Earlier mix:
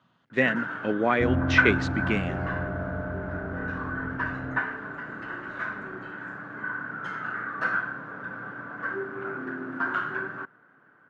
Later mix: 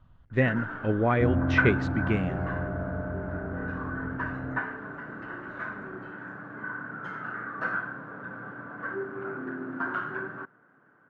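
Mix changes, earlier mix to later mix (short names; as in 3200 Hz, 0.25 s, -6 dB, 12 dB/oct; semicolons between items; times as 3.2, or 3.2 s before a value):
speech: remove HPF 170 Hz 24 dB/oct; master: add high shelf 2000 Hz -10.5 dB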